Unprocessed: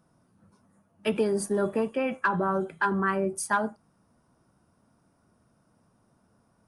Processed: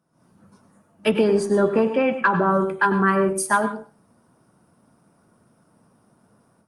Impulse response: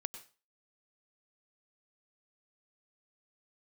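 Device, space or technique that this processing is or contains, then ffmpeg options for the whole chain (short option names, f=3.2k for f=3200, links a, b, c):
far-field microphone of a smart speaker: -filter_complex "[0:a]asettb=1/sr,asplit=3[a][b][c];[a]atrim=end=1.114[d];[b]atrim=start=1.11:end=2.5,asetpts=PTS-STARTPTS,afade=t=in:d=0.004:c=qsin,afade=t=out:st=1.386:d=0.004:c=qsin,lowpass=5.7k[e];[c]atrim=start=2.496[f];[d][e]acrossfade=d=0.004:c1=hsin:c2=qsin[g];[g][f]acrossfade=d=0.004:c1=qsin:c2=hsin[h];[1:a]atrim=start_sample=2205[i];[h][i]afir=irnorm=-1:irlink=0,highpass=110,dynaudnorm=f=120:g=3:m=14dB,volume=-4dB" -ar 48000 -c:a libopus -b:a 48k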